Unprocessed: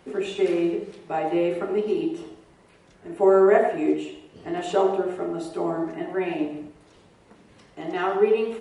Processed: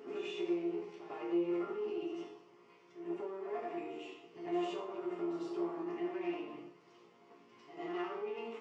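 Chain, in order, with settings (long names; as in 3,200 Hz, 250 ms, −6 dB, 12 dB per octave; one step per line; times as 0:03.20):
gain on one half-wave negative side −7 dB
downward compressor, threshold −24 dBFS, peak gain reduction 10.5 dB
brickwall limiter −26 dBFS, peak gain reduction 11 dB
loudspeaker in its box 280–5,600 Hz, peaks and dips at 360 Hz +4 dB, 550 Hz −7 dB, 790 Hz −4 dB, 1,100 Hz +4 dB, 1,600 Hz −9 dB, 3,900 Hz −9 dB
resonators tuned to a chord A#2 minor, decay 0.44 s
on a send: backwards echo 99 ms −9.5 dB
on the sum: level +12.5 dB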